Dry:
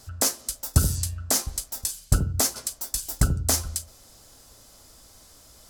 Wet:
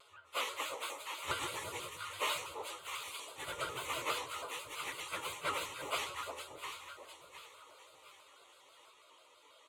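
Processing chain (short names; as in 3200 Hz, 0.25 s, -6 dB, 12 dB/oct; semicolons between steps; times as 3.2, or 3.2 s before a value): self-modulated delay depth 0.13 ms; harmoniser -7 st -14 dB, +4 st -14 dB; BPF 700–4500 Hz; high shelf 3200 Hz -3 dB; echo with dull and thin repeats by turns 0.208 s, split 900 Hz, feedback 61%, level -3 dB; echoes that change speed 0.158 s, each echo +2 st, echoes 2; fixed phaser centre 1100 Hz, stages 8; plain phase-vocoder stretch 1.7×; shaped vibrato square 6.1 Hz, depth 100 cents; gain +3.5 dB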